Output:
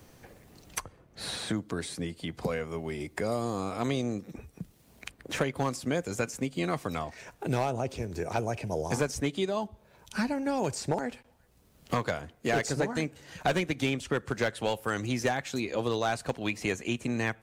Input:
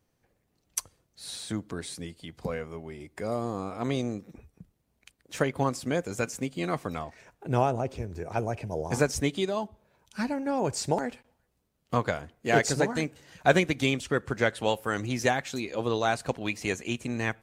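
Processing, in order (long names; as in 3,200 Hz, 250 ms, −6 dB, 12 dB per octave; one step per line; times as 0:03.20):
gain into a clipping stage and back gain 17 dB
multiband upward and downward compressor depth 70%
level −1.5 dB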